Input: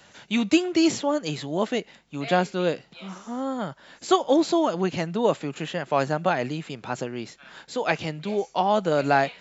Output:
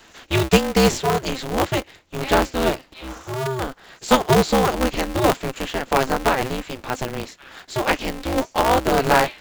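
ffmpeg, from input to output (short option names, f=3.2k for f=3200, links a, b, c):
-af "acrusher=bits=6:mode=log:mix=0:aa=0.000001,aeval=exprs='val(0)*sgn(sin(2*PI*130*n/s))':c=same,volume=4dB"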